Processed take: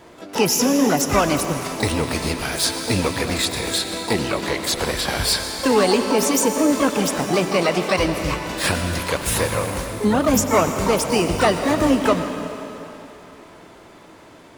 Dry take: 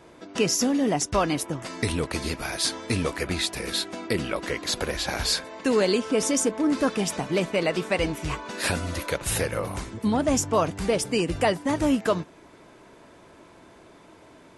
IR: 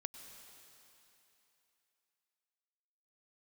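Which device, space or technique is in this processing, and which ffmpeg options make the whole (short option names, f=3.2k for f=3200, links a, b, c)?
shimmer-style reverb: -filter_complex "[0:a]asplit=2[a][b];[b]asetrate=88200,aresample=44100,atempo=0.5,volume=-7dB[c];[a][c]amix=inputs=2:normalize=0[d];[1:a]atrim=start_sample=2205[e];[d][e]afir=irnorm=-1:irlink=0,asettb=1/sr,asplit=3[f][g][h];[f]atrim=end=4.844[i];[g]atrim=start=4.84:end=5.4,asetpts=PTS-STARTPTS,afade=t=in:d=0.004:c=qsin,afade=t=out:st=0.556:d=0.004:c=qsin,bandreject=f=6.6k:w=8.9[j];[h]atrim=start=5.396[k];[i][j]acrossfade=d=0.004:c1=hsin:c2=qsin[l];[l][k]acrossfade=d=0.004:c1=qsin:c2=hsin,volume=8dB"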